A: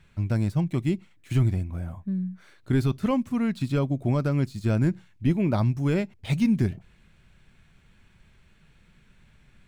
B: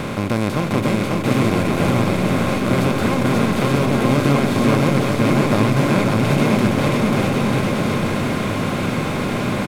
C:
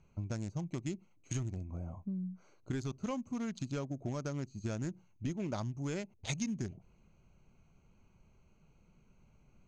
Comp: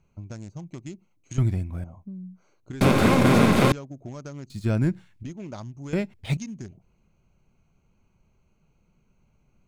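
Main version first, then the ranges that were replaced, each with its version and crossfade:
C
1.38–1.84 from A
2.81–3.72 from B
4.5–5.23 from A
5.93–6.37 from A

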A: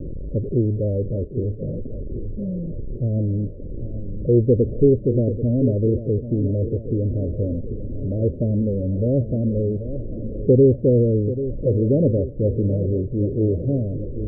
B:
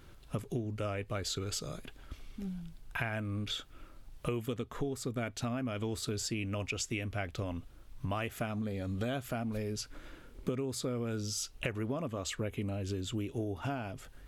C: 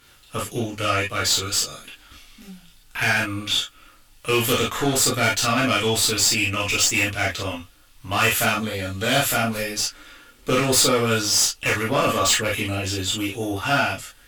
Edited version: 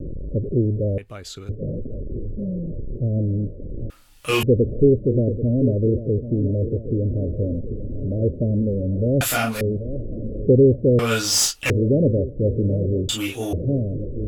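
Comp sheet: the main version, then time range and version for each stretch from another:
A
0.98–1.49 from B
3.9–4.43 from C
9.21–9.61 from C
10.99–11.7 from C
13.09–13.53 from C

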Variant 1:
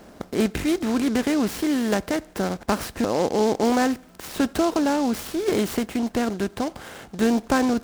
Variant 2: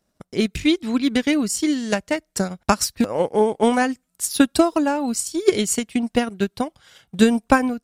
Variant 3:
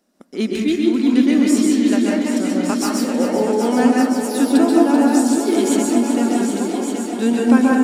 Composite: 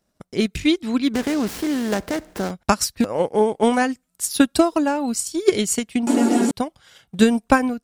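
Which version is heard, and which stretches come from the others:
2
1.14–2.51 from 1
6.07–6.51 from 3

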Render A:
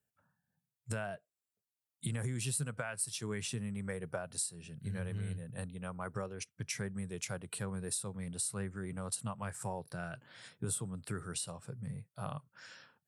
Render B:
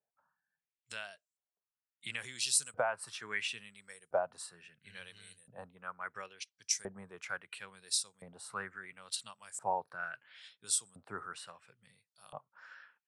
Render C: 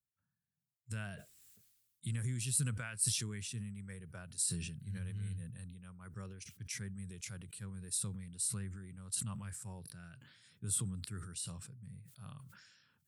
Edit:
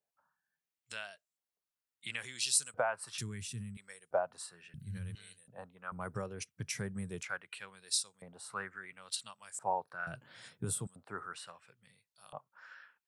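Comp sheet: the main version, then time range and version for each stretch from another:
B
3.18–3.77 from C
4.74–5.15 from C
5.92–7.23 from A
10.07–10.87 from A

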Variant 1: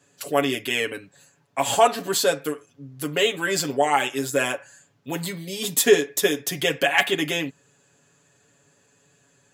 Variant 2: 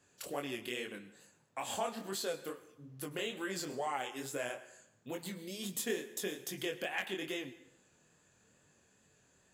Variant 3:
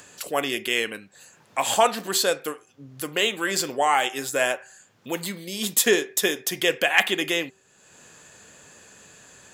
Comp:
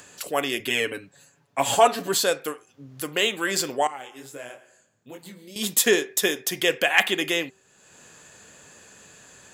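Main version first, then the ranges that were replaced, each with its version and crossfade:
3
0.6–2.24 from 1
3.87–5.56 from 2

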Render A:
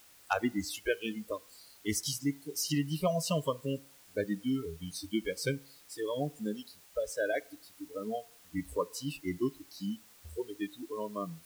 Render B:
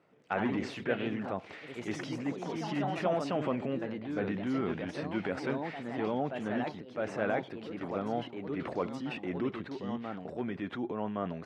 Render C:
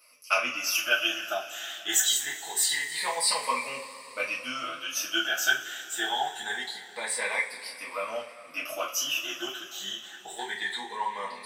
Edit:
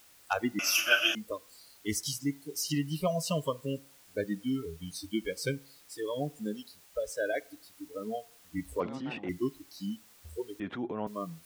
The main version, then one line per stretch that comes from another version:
A
0.59–1.15 from C
8.8–9.29 from B
10.6–11.07 from B

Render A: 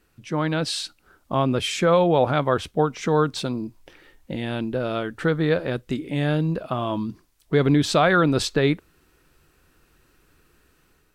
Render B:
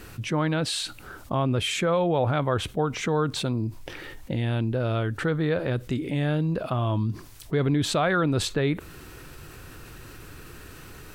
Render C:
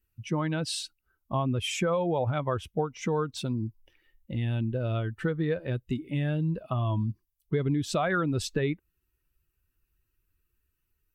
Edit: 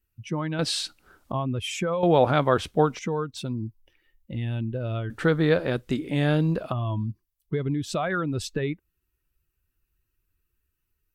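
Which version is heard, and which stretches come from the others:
C
0.59–1.32 from A
2.03–2.99 from A
5.1–6.72 from A
not used: B

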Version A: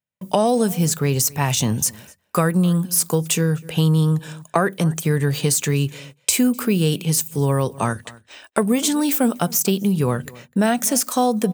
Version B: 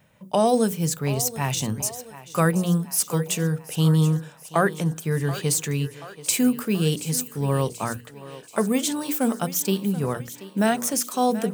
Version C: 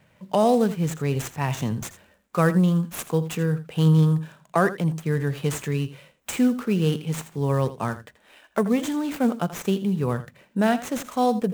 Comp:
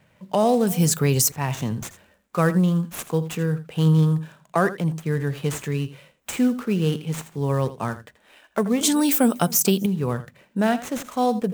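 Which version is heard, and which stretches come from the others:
C
0.67–1.32 from A
8.81–9.86 from A
not used: B

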